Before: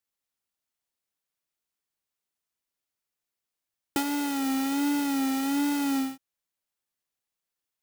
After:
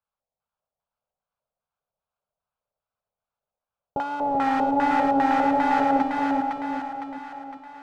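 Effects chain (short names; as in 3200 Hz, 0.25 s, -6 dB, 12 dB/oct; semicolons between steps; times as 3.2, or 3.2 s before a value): fixed phaser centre 780 Hz, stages 4; 4.2–6.02 power-law curve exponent 0.35; LFO low-pass square 2.5 Hz 620–1700 Hz; on a send: split-band echo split 690 Hz, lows 0.388 s, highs 0.509 s, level -3 dB; on the sum: gain +5.5 dB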